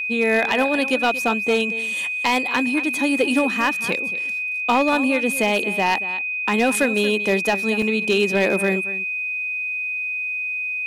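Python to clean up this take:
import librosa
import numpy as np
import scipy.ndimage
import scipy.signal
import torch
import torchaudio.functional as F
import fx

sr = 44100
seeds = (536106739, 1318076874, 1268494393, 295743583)

y = fx.fix_declip(x, sr, threshold_db=-10.5)
y = fx.notch(y, sr, hz=2500.0, q=30.0)
y = fx.fix_interpolate(y, sr, at_s=(7.82,), length_ms=3.2)
y = fx.fix_echo_inverse(y, sr, delay_ms=230, level_db=-15.0)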